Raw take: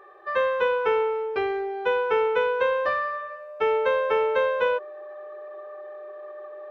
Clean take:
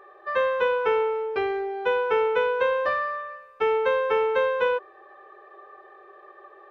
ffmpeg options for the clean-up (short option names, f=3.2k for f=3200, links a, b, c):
-af "bandreject=f=600:w=30"